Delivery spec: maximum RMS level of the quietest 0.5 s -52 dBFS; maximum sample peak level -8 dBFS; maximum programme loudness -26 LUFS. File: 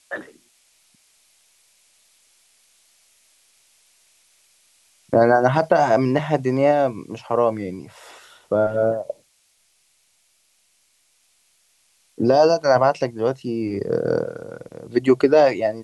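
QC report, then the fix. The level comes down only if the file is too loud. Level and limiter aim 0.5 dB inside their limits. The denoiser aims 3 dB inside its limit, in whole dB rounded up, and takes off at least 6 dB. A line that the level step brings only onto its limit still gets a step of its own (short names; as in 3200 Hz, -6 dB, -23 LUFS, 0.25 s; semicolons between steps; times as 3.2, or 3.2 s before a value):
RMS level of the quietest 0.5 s -63 dBFS: OK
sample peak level -4.5 dBFS: fail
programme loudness -19.5 LUFS: fail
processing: gain -7 dB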